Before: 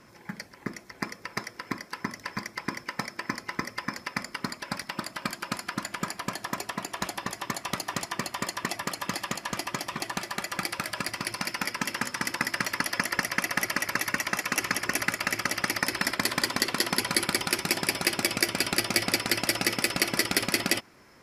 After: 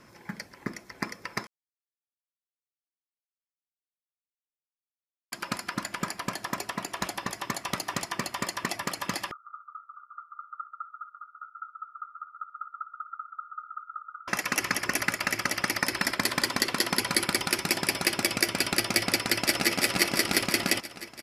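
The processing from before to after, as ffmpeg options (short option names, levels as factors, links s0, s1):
-filter_complex "[0:a]asettb=1/sr,asplit=3[s0][s1][s2];[s0]atrim=end=9.314[s3];[s1]atrim=start=9.31:end=14.28,asetpts=PTS-STARTPTS,afade=t=in:d=0.004:c=qsin,afade=t=out:st=4.966:d=0.004:c=qsin,asuperpass=centerf=1300:order=12:qfactor=5.7[s4];[s2]atrim=start=14.276[s5];[s3][s4]acrossfade=d=0.004:c1=hsin:c2=qsin[s6];[s6][s5]acrossfade=d=0.004:c1=qsin:c2=hsin,asplit=2[s7][s8];[s8]afade=t=in:st=19.12:d=0.01,afade=t=out:st=19.72:d=0.01,aecho=0:1:340|680|1020|1360|1700|2040|2380|2720|3060|3400:0.562341|0.365522|0.237589|0.154433|0.100381|0.0652479|0.0424112|0.0275673|0.0179187|0.0116472[s9];[s7][s9]amix=inputs=2:normalize=0,asplit=3[s10][s11][s12];[s10]atrim=end=1.47,asetpts=PTS-STARTPTS,afade=t=out:st=1.466:d=0.004:c=hsin[s13];[s11]atrim=start=1.47:end=5.32,asetpts=PTS-STARTPTS,volume=0[s14];[s12]atrim=start=5.32,asetpts=PTS-STARTPTS,afade=t=in:d=0.004:c=hsin[s15];[s13][s14][s15]concat=n=3:v=0:a=1"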